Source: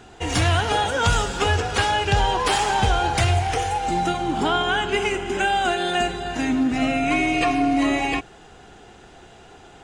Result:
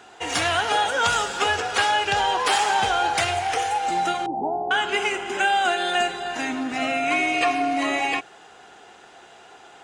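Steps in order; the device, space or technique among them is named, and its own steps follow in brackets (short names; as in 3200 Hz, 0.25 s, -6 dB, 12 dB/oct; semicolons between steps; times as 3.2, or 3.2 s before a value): filter by subtraction (in parallel: LPF 950 Hz 12 dB/oct + phase invert); 4.26–4.71 on the sum: Chebyshev low-pass 890 Hz, order 6; dynamic EQ 1000 Hz, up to -3 dB, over -37 dBFS, Q 5.6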